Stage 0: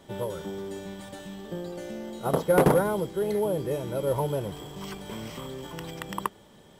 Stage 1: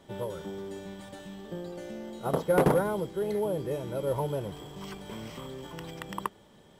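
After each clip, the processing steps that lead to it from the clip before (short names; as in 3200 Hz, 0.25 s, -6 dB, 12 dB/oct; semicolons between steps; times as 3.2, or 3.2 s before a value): high shelf 6800 Hz -4 dB; gain -3 dB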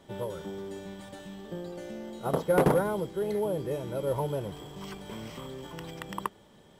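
nothing audible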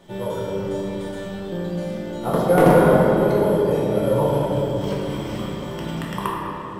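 shoebox room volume 180 m³, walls hard, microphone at 0.91 m; gain +4 dB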